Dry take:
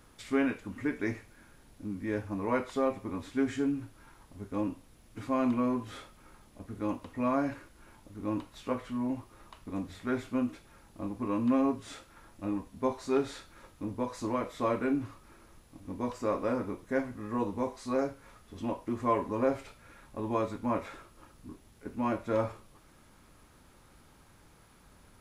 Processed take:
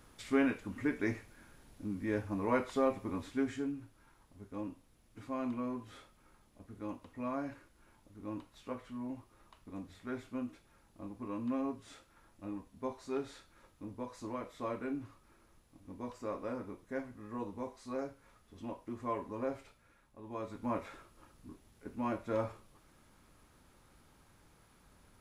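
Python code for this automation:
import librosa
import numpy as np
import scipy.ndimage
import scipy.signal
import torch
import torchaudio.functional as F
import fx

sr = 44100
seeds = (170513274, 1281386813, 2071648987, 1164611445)

y = fx.gain(x, sr, db=fx.line((3.18, -1.5), (3.78, -9.0), (19.6, -9.0), (20.19, -16.0), (20.64, -5.0)))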